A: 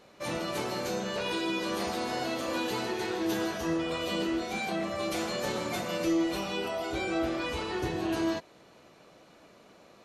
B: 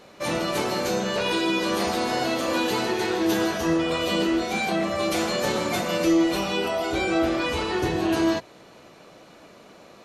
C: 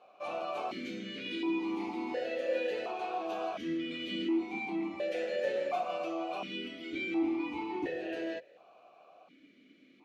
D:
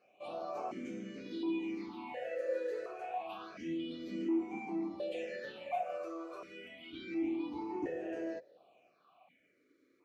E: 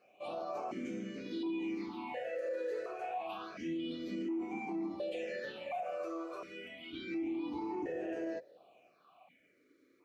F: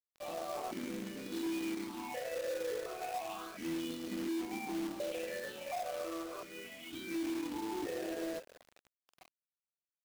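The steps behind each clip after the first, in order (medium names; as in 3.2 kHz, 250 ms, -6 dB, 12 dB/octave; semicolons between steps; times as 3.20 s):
hum notches 60/120 Hz; trim +7.5 dB
stepped vowel filter 1.4 Hz
phase shifter stages 6, 0.28 Hz, lowest notch 200–3900 Hz; trim -3 dB
peak limiter -33.5 dBFS, peak gain reduction 8.5 dB; trim +2.5 dB
companded quantiser 4-bit; trim -1 dB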